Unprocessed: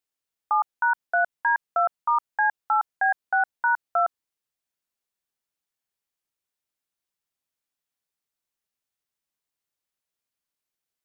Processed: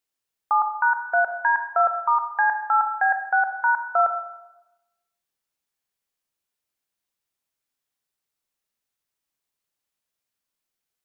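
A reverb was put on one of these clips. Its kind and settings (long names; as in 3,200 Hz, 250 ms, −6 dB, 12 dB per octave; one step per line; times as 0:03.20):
four-comb reverb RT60 0.98 s, combs from 29 ms, DRR 6.5 dB
level +2 dB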